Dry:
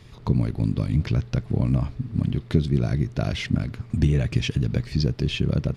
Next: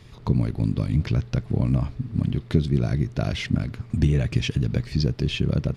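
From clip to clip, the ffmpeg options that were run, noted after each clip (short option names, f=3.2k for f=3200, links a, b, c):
-af anull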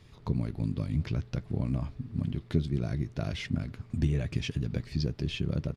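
-filter_complex "[0:a]asplit=2[a][b];[b]adelay=12,volume=-13.5dB[c];[a][c]amix=inputs=2:normalize=0,volume=-8dB"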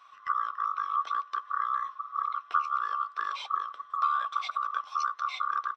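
-filter_complex "[0:a]afftfilt=real='real(if(lt(b,960),b+48*(1-2*mod(floor(b/48),2)),b),0)':imag='imag(if(lt(b,960),b+48*(1-2*mod(floor(b/48),2)),b),0)':win_size=2048:overlap=0.75,acrossover=split=500 5500:gain=0.126 1 0.126[a][b][c];[a][b][c]amix=inputs=3:normalize=0"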